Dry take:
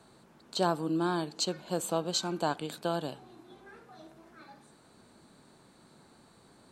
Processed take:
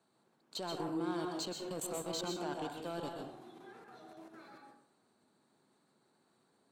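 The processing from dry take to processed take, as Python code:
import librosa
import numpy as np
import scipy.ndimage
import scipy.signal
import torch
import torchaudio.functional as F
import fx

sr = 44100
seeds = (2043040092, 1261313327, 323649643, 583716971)

y = scipy.signal.sosfilt(scipy.signal.butter(2, 150.0, 'highpass', fs=sr, output='sos'), x)
y = fx.level_steps(y, sr, step_db=19)
y = 10.0 ** (-33.0 / 20.0) * np.tanh(y / 10.0 ** (-33.0 / 20.0))
y = fx.rev_plate(y, sr, seeds[0], rt60_s=0.58, hf_ratio=0.5, predelay_ms=115, drr_db=1.5)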